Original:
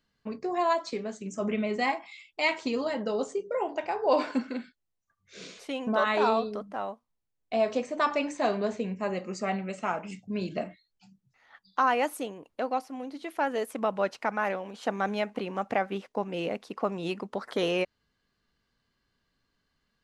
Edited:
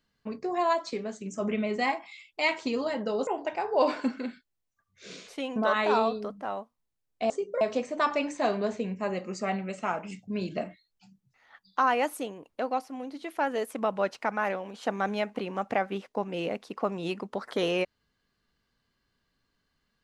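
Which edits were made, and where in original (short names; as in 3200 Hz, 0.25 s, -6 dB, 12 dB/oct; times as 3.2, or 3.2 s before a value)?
3.27–3.58 move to 7.61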